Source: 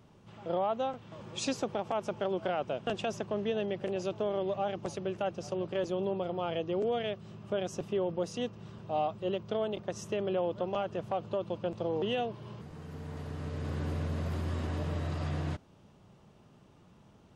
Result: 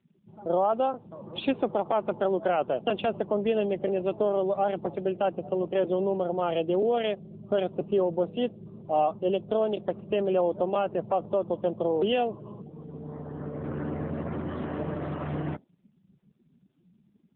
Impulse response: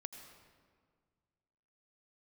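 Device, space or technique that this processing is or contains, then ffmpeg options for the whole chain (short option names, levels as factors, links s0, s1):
mobile call with aggressive noise cancelling: -af "highpass=170,afftdn=nr=27:nf=-48,volume=2.37" -ar 8000 -c:a libopencore_amrnb -b:a 7950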